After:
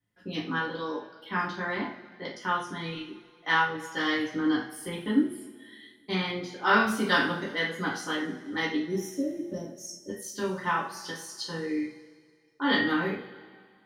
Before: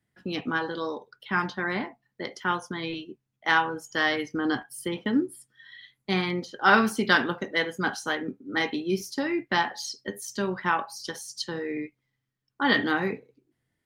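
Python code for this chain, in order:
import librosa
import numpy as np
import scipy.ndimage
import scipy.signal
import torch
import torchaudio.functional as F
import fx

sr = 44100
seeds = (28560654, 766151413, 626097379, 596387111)

y = fx.spec_box(x, sr, start_s=8.77, length_s=1.33, low_hz=670.0, high_hz=5300.0, gain_db=-30)
y = fx.rev_double_slope(y, sr, seeds[0], early_s=0.37, late_s=2.0, knee_db=-18, drr_db=-6.0)
y = F.gain(torch.from_numpy(y), -9.0).numpy()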